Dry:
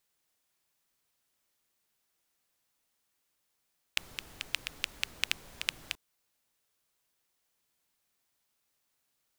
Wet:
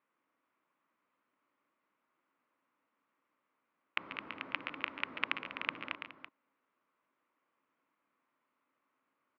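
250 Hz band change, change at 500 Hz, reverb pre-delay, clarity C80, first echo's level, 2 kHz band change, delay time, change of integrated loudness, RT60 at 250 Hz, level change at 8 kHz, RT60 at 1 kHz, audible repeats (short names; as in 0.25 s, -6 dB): +7.5 dB, +4.5 dB, none, none, -13.0 dB, 0.0 dB, 0.137 s, -3.0 dB, none, under -30 dB, none, 3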